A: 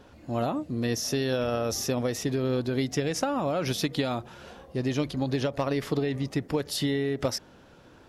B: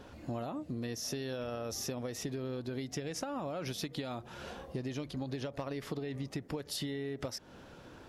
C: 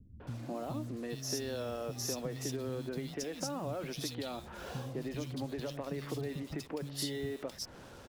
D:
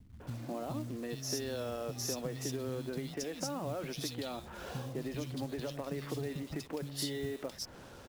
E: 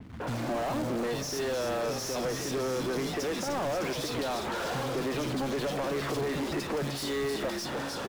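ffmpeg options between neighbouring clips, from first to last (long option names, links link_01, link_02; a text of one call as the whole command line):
ffmpeg -i in.wav -af "acompressor=threshold=-36dB:ratio=10,volume=1dB" out.wav
ffmpeg -i in.wav -filter_complex "[0:a]acrossover=split=590|2700[link_01][link_02][link_03];[link_02]alimiter=level_in=15dB:limit=-24dB:level=0:latency=1:release=109,volume=-15dB[link_04];[link_01][link_04][link_03]amix=inputs=3:normalize=0,acrusher=bits=8:mix=0:aa=0.5,acrossover=split=210|2600[link_05][link_06][link_07];[link_06]adelay=200[link_08];[link_07]adelay=270[link_09];[link_05][link_08][link_09]amix=inputs=3:normalize=0,volume=1.5dB" out.wav
ffmpeg -i in.wav -af "acrusher=bits=5:mode=log:mix=0:aa=0.000001" out.wav
ffmpeg -i in.wav -filter_complex "[0:a]asplit=9[link_01][link_02][link_03][link_04][link_05][link_06][link_07][link_08][link_09];[link_02]adelay=303,afreqshift=-70,volume=-11dB[link_10];[link_03]adelay=606,afreqshift=-140,volume=-14.9dB[link_11];[link_04]adelay=909,afreqshift=-210,volume=-18.8dB[link_12];[link_05]adelay=1212,afreqshift=-280,volume=-22.6dB[link_13];[link_06]adelay=1515,afreqshift=-350,volume=-26.5dB[link_14];[link_07]adelay=1818,afreqshift=-420,volume=-30.4dB[link_15];[link_08]adelay=2121,afreqshift=-490,volume=-34.3dB[link_16];[link_09]adelay=2424,afreqshift=-560,volume=-38.1dB[link_17];[link_01][link_10][link_11][link_12][link_13][link_14][link_15][link_16][link_17]amix=inputs=9:normalize=0,asplit=2[link_18][link_19];[link_19]highpass=frequency=720:poles=1,volume=32dB,asoftclip=type=tanh:threshold=-22.5dB[link_20];[link_18][link_20]amix=inputs=2:normalize=0,lowpass=frequency=1300:poles=1,volume=-6dB,adynamicequalizer=threshold=0.00158:dfrequency=4500:dqfactor=0.7:tfrequency=4500:tqfactor=0.7:attack=5:release=100:ratio=0.375:range=3:mode=boostabove:tftype=highshelf" out.wav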